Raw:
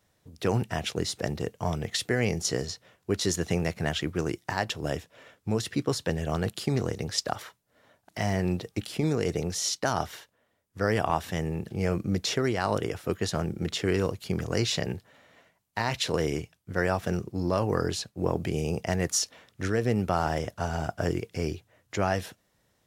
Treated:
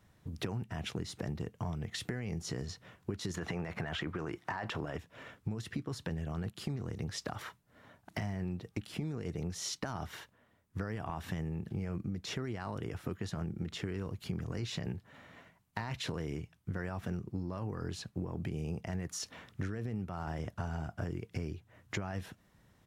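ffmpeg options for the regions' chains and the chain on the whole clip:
-filter_complex "[0:a]asettb=1/sr,asplit=3[a][b][c];[a]atrim=end=3.344[d];[b]atrim=start=3.34:end=4.98,asetpts=PTS-STARTPTS,afade=t=in:d=0.004:c=qsin,afade=t=out:st=1.636:d=0.004:c=qsin,equalizer=f=1.1k:w=0.3:g=14.5,deesser=0.3[e];[c]atrim=start=4.976[f];[d][e]acrossfade=d=0.004:c1=hsin:c2=qsin[g];[g][f]acrossfade=d=0.004:c1=qsin:c2=hsin,alimiter=limit=-19.5dB:level=0:latency=1:release=27,firequalizer=gain_entry='entry(180,0);entry(510,-9);entry(1000,-4);entry(4800,-11)':delay=0.05:min_phase=1,acompressor=threshold=-42dB:ratio=12,volume=8dB"

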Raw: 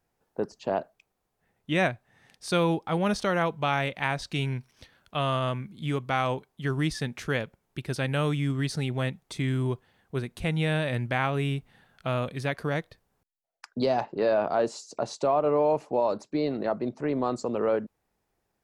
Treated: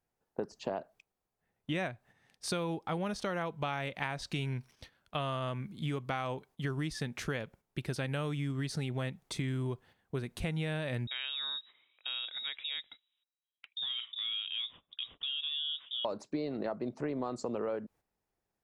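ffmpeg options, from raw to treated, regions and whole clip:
-filter_complex "[0:a]asettb=1/sr,asplit=3[a][b][c];[a]atrim=end=11.074[d];[b]atrim=start=11.07:end=16.05,asetpts=PTS-STARTPTS,afade=t=in:d=0.004:c=qsin,afade=t=out:st=4.976:d=0.004:c=qsin,acompressor=threshold=-42dB:ratio=2:attack=3.2:release=140:knee=1:detection=peak,lowpass=f=3.3k:t=q:w=0.5098,lowpass=f=3.3k:t=q:w=0.6013,lowpass=f=3.3k:t=q:w=0.9,lowpass=f=3.3k:t=q:w=2.563,afreqshift=-3900[e];[c]atrim=start=16.046[f];[d][e]acrossfade=d=0.004:c1=hsin:c2=qsin[g];[g][f]acrossfade=d=0.004:c1=qsin:c2=hsin,agate=range=-9dB:threshold=-52dB:ratio=16:detection=peak,acompressor=threshold=-32dB:ratio=6"

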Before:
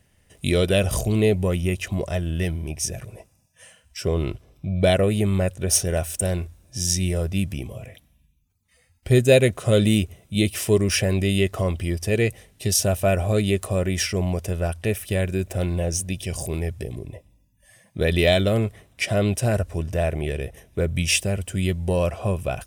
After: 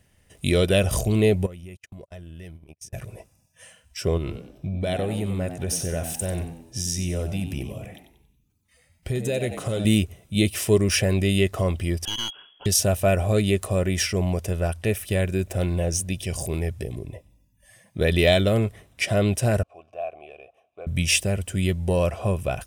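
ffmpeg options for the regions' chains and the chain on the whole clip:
-filter_complex "[0:a]asettb=1/sr,asplit=3[a][b][c];[a]atrim=end=1.464[d];[b]atrim=start=1.46:end=2.93,asetpts=PTS-STARTPTS,afade=t=in:d=0.004:c=qsin,afade=t=out:st=1.466:d=0.004:c=qsin,agate=range=-48dB:threshold=-27dB:ratio=16:release=100:detection=peak,acompressor=threshold=-40dB:ratio=4:attack=3.2:release=140:knee=1:detection=peak[e];[c]atrim=start=2.926[f];[d][e]acrossfade=d=0.004:c1=hsin:c2=qsin[g];[g][f]acrossfade=d=0.004:c1=qsin:c2=hsin,asettb=1/sr,asplit=3[h][i][j];[h]atrim=end=4.174[k];[i]atrim=start=4.17:end=9.85,asetpts=PTS-STARTPTS,afade=t=in:d=0.004:c=qsin,afade=t=out:st=5.676:d=0.004:c=qsin,acompressor=threshold=-23dB:ratio=5:attack=3.2:release=140:knee=1:detection=peak,asplit=5[l][m][n][o][p];[m]adelay=93,afreqshift=80,volume=-10dB[q];[n]adelay=186,afreqshift=160,volume=-18.9dB[r];[o]adelay=279,afreqshift=240,volume=-27.7dB[s];[p]adelay=372,afreqshift=320,volume=-36.6dB[t];[l][q][r][s][t]amix=inputs=5:normalize=0,atrim=end_sample=250488[u];[j]atrim=start=9.846[v];[k][u]acrossfade=d=0.004:c1=hsin:c2=qsin[w];[w][v]acrossfade=d=0.004:c1=qsin:c2=hsin,asettb=1/sr,asplit=3[x][y][z];[x]atrim=end=12.054[aa];[y]atrim=start=12.05:end=12.66,asetpts=PTS-STARTPTS,afade=t=in:d=0.004:c=qsin,afade=t=out:st=0.606:d=0.004:c=qsin,lowpass=f=2.9k:t=q:w=0.5098,lowpass=f=2.9k:t=q:w=0.6013,lowpass=f=2.9k:t=q:w=0.9,lowpass=f=2.9k:t=q:w=2.563,afreqshift=-3400,acompressor=threshold=-22dB:ratio=5:attack=3.2:release=140:knee=1:detection=peak,aeval=exprs='clip(val(0),-1,0.0211)':c=same[ab];[z]atrim=start=12.656[ac];[aa][ab]acrossfade=d=0.004:c1=hsin:c2=qsin[ad];[ad][ac]acrossfade=d=0.004:c1=qsin:c2=hsin,asettb=1/sr,asplit=3[ae][af][ag];[ae]atrim=end=19.634[ah];[af]atrim=start=19.63:end=20.87,asetpts=PTS-STARTPTS,afade=t=in:d=0.004:c=qsin,afade=t=out:st=1.236:d=0.004:c=qsin,asplit=3[ai][aj][ak];[ai]bandpass=f=730:t=q:w=8,volume=0dB[al];[aj]bandpass=f=1.09k:t=q:w=8,volume=-6dB[am];[ak]bandpass=f=2.44k:t=q:w=8,volume=-9dB[an];[al][am][an]amix=inputs=3:normalize=0,equalizer=f=160:w=1.8:g=-5.5[ao];[ag]atrim=start=20.866[ap];[ah][ao]acrossfade=d=0.004:c1=hsin:c2=qsin[aq];[aq][ap]acrossfade=d=0.004:c1=qsin:c2=hsin"

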